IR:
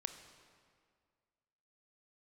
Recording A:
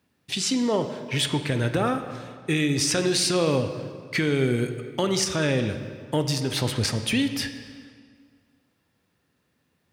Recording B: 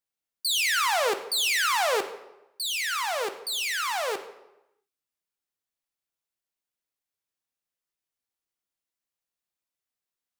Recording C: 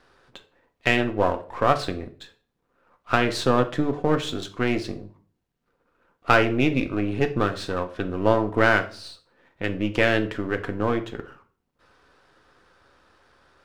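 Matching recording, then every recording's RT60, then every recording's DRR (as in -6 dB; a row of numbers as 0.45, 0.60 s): A; 2.0, 0.95, 0.45 s; 8.0, 7.5, 6.5 dB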